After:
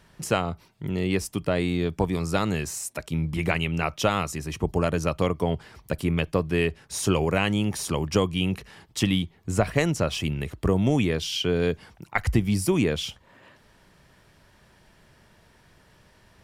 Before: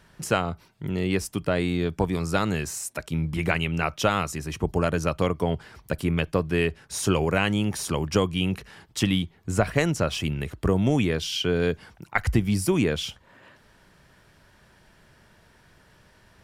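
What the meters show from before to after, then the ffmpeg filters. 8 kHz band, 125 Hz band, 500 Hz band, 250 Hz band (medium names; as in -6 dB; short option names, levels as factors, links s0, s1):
0.0 dB, 0.0 dB, 0.0 dB, 0.0 dB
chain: -af "equalizer=f=1500:t=o:w=0.31:g=-4"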